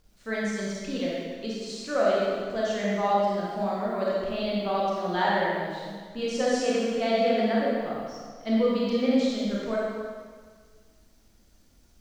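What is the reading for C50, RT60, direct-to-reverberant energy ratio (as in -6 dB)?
-3.0 dB, 1.7 s, -6.0 dB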